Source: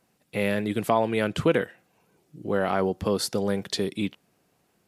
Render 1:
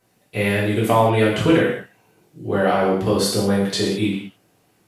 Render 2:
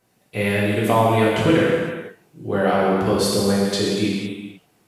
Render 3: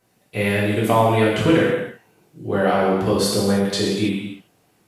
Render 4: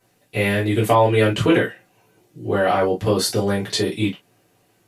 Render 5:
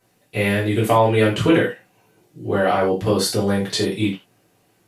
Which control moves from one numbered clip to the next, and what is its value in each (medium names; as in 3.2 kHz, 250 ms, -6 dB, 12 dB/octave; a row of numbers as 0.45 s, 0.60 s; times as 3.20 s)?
gated-style reverb, gate: 240 ms, 530 ms, 350 ms, 80 ms, 120 ms